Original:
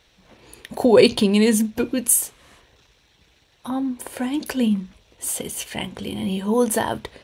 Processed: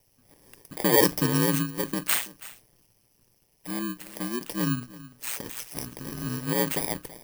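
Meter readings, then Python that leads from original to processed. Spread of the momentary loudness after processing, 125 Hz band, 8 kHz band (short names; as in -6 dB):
16 LU, 0.0 dB, -8.0 dB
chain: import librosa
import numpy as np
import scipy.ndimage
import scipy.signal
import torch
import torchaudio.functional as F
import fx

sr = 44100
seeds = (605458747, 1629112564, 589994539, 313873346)

y = fx.bit_reversed(x, sr, seeds[0], block=32)
y = y + 10.0 ** (-18.5 / 20.0) * np.pad(y, (int(329 * sr / 1000.0), 0))[:len(y)]
y = y * np.sin(2.0 * np.pi * 60.0 * np.arange(len(y)) / sr)
y = F.gain(torch.from_numpy(y), -4.0).numpy()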